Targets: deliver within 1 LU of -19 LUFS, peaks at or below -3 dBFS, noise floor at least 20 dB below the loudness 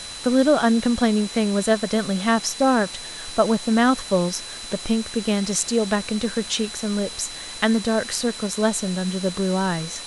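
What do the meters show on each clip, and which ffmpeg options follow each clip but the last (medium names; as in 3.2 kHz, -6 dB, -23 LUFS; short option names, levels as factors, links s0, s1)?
steady tone 4 kHz; tone level -36 dBFS; noise floor -35 dBFS; noise floor target -42 dBFS; loudness -22.0 LUFS; peak level -4.0 dBFS; loudness target -19.0 LUFS
-> -af "bandreject=f=4000:w=30"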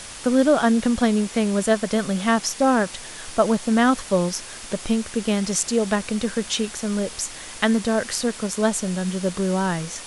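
steady tone not found; noise floor -38 dBFS; noise floor target -42 dBFS
-> -af "afftdn=nr=6:nf=-38"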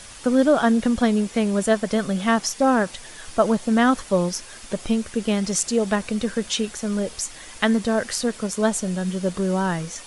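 noise floor -41 dBFS; noise floor target -43 dBFS
-> -af "afftdn=nr=6:nf=-41"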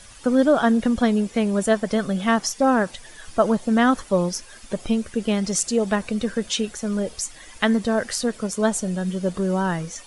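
noise floor -45 dBFS; loudness -22.5 LUFS; peak level -4.5 dBFS; loudness target -19.0 LUFS
-> -af "volume=1.5,alimiter=limit=0.708:level=0:latency=1"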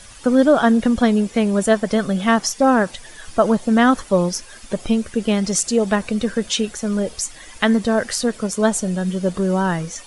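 loudness -19.0 LUFS; peak level -3.0 dBFS; noise floor -41 dBFS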